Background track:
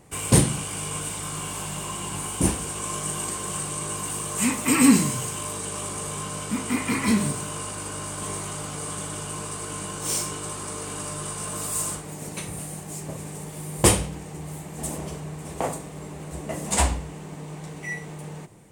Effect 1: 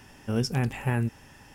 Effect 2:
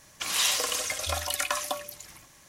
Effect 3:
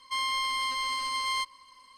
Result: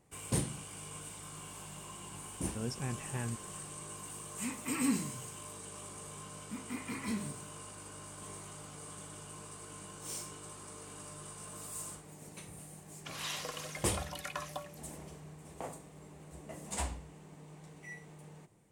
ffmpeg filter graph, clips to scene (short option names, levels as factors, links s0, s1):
-filter_complex "[0:a]volume=0.168[s0];[2:a]highshelf=f=3200:g=-10[s1];[1:a]atrim=end=1.54,asetpts=PTS-STARTPTS,volume=0.251,afade=t=in:d=0.004:c=hsin,afade=t=out:st=1.536:d=0.004:c=hsin,adelay=2270[s2];[s1]atrim=end=2.48,asetpts=PTS-STARTPTS,volume=0.355,afade=t=in:d=0.004:c=hsin,afade=t=out:st=2.476:d=0.004:c=hsin,adelay=12850[s3];[s0][s2][s3]amix=inputs=3:normalize=0"